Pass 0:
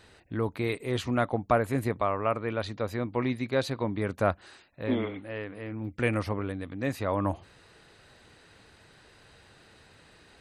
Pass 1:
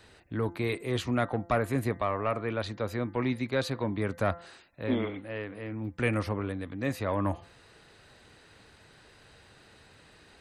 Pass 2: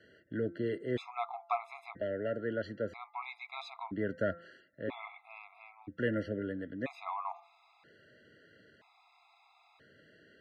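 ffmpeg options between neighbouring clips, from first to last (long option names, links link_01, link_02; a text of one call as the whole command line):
ffmpeg -i in.wav -filter_complex "[0:a]acrossover=split=270|1200[link_01][link_02][link_03];[link_02]asoftclip=type=tanh:threshold=-23.5dB[link_04];[link_01][link_04][link_03]amix=inputs=3:normalize=0,bandreject=frequency=171.1:width_type=h:width=4,bandreject=frequency=342.2:width_type=h:width=4,bandreject=frequency=513.3:width_type=h:width=4,bandreject=frequency=684.4:width_type=h:width=4,bandreject=frequency=855.5:width_type=h:width=4,bandreject=frequency=1026.6:width_type=h:width=4,bandreject=frequency=1197.7:width_type=h:width=4,bandreject=frequency=1368.8:width_type=h:width=4,bandreject=frequency=1539.9:width_type=h:width=4,bandreject=frequency=1711:width_type=h:width=4,bandreject=frequency=1882.1:width_type=h:width=4,bandreject=frequency=2053.2:width_type=h:width=4" out.wav
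ffmpeg -i in.wav -af "highpass=160,lowpass=3100,afftfilt=real='re*gt(sin(2*PI*0.51*pts/sr)*(1-2*mod(floor(b*sr/1024/680),2)),0)':imag='im*gt(sin(2*PI*0.51*pts/sr)*(1-2*mod(floor(b*sr/1024/680),2)),0)':win_size=1024:overlap=0.75,volume=-2dB" out.wav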